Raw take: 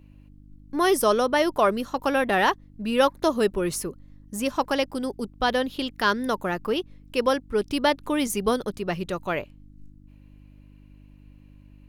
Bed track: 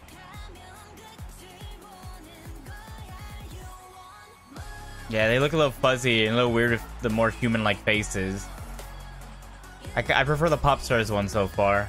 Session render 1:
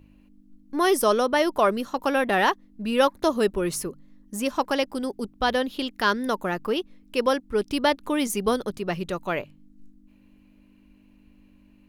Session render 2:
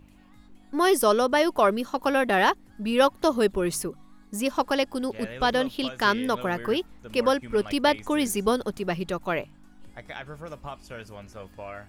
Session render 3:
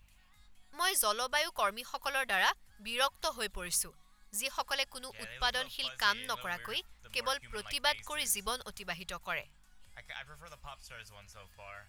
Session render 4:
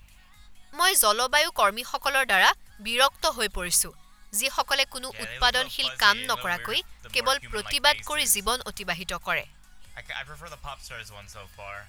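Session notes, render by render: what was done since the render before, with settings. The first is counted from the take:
de-hum 50 Hz, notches 3
add bed track -17 dB
passive tone stack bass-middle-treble 10-0-10
gain +10 dB

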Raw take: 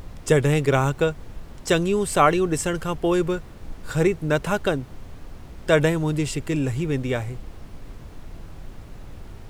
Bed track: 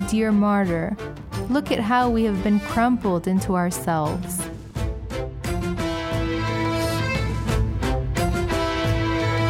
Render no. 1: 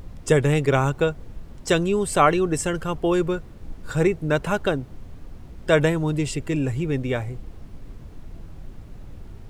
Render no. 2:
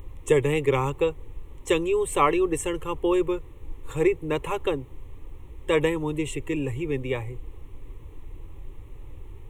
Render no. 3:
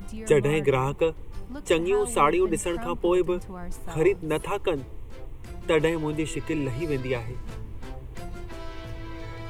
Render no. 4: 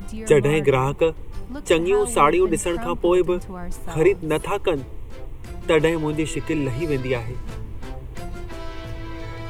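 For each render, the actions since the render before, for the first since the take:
denoiser 6 dB, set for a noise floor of -42 dBFS
wow and flutter 29 cents; fixed phaser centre 1000 Hz, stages 8
add bed track -18 dB
gain +4.5 dB

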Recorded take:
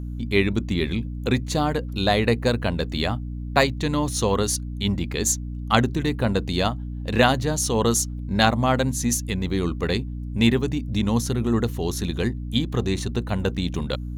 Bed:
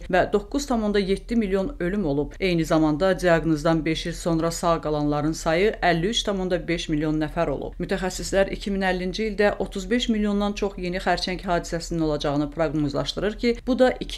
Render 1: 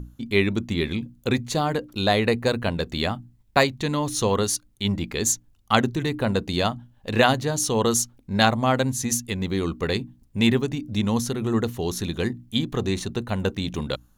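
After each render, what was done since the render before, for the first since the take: notches 60/120/180/240/300 Hz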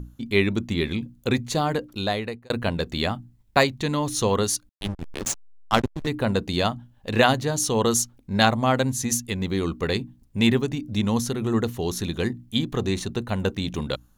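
1.8–2.5 fade out; 4.69–6.07 backlash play -15.5 dBFS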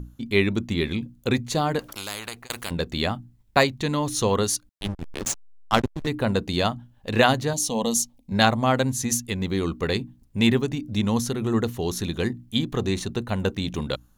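1.79–2.71 spectral compressor 4:1; 7.53–8.32 fixed phaser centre 380 Hz, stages 6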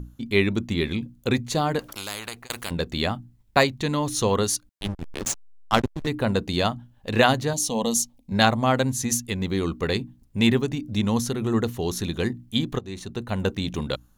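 12.79–13.41 fade in, from -18 dB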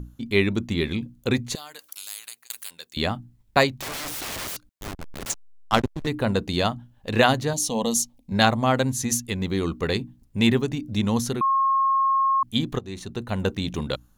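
1.55–2.97 differentiator; 3.71–5.3 wrapped overs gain 27.5 dB; 11.41–12.43 bleep 1080 Hz -17.5 dBFS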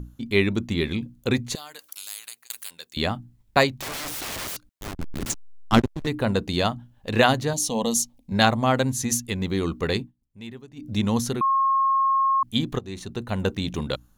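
4.96–5.8 resonant low shelf 410 Hz +7 dB, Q 1.5; 9.99–10.88 dip -19.5 dB, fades 0.13 s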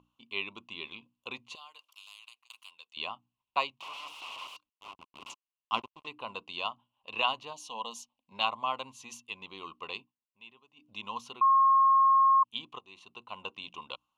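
double band-pass 1700 Hz, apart 1.4 oct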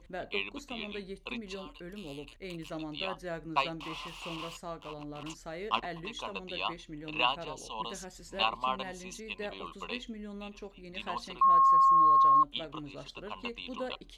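add bed -20 dB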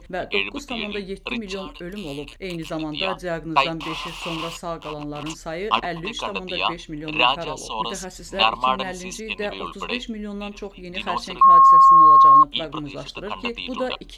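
gain +11.5 dB; limiter -3 dBFS, peak gain reduction 2 dB

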